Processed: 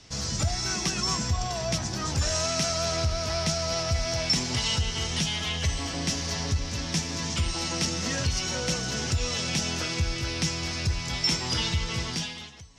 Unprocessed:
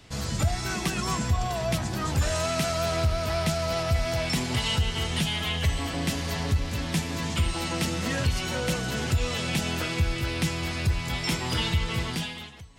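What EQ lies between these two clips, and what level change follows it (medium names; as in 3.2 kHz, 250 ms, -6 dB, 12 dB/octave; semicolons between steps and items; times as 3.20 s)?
low-pass 8.5 kHz 12 dB/octave; peaking EQ 5.7 kHz +13.5 dB 0.6 oct; -2.5 dB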